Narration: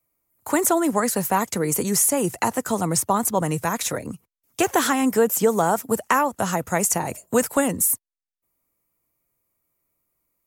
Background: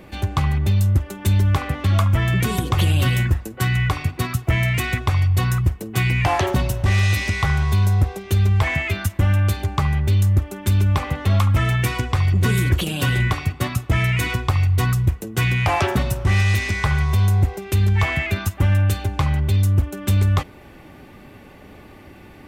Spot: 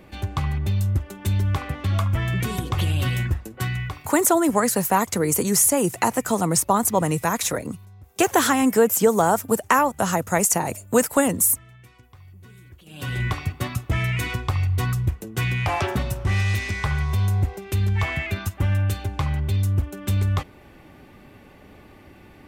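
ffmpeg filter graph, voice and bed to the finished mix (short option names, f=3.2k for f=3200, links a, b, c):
-filter_complex "[0:a]adelay=3600,volume=1.5dB[a];[1:a]volume=19.5dB,afade=t=out:st=3.6:d=0.57:silence=0.0630957,afade=t=in:st=12.84:d=0.45:silence=0.0595662[b];[a][b]amix=inputs=2:normalize=0"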